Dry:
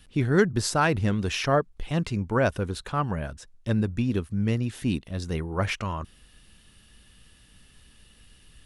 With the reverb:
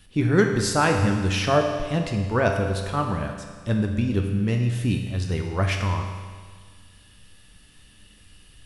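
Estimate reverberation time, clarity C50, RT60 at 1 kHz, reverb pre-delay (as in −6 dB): 1.6 s, 5.0 dB, 1.6 s, 10 ms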